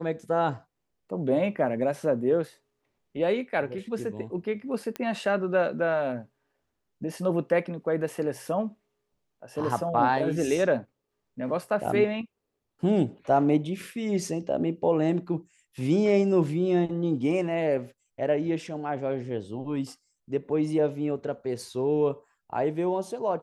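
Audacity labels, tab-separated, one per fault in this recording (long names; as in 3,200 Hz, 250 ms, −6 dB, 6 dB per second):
4.960000	4.960000	click −18 dBFS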